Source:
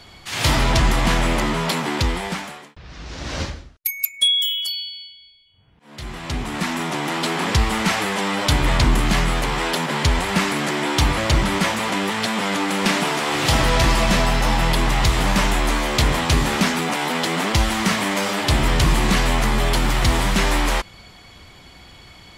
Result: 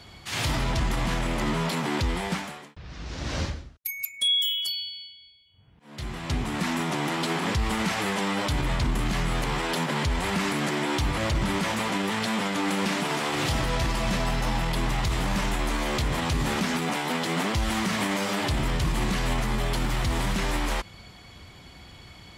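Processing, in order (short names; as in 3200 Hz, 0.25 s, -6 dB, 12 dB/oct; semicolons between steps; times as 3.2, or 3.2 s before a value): HPF 110 Hz 6 dB/oct; low shelf 160 Hz +10.5 dB; limiter -13.5 dBFS, peak gain reduction 10 dB; gain -4 dB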